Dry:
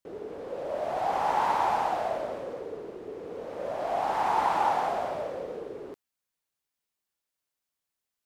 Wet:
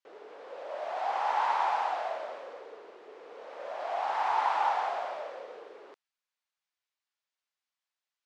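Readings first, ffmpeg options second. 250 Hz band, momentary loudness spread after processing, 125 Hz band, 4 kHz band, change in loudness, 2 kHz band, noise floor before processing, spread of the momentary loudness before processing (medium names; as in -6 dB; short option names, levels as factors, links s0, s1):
under -15 dB, 21 LU, under -25 dB, -1.0 dB, -1.5 dB, -0.5 dB, under -85 dBFS, 15 LU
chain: -af "highpass=790,lowpass=5100"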